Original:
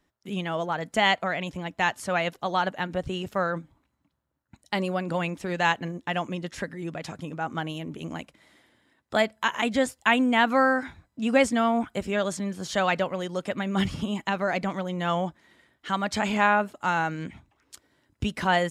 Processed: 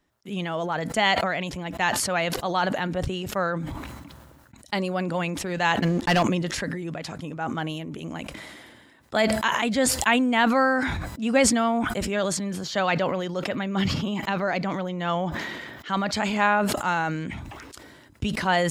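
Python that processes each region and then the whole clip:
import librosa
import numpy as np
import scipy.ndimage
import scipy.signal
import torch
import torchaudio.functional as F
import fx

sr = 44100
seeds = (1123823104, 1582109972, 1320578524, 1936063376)

y = fx.chain(x, sr, fx.lowpass(hz=9000.0, slope=12),
    fx.leveller(passes=3), at=(5.82, 6.23))
y = fx.chain(y, sr, fx.highpass(hz=95.0, slope=12),
    fx.peak_eq(hz=9300.0, db=-14.5, octaves=0.43), at=(12.63, 16.13))
y = fx.dynamic_eq(y, sr, hz=4500.0, q=5.4, threshold_db=-54.0, ratio=4.0, max_db=6)
y = fx.sustainer(y, sr, db_per_s=30.0)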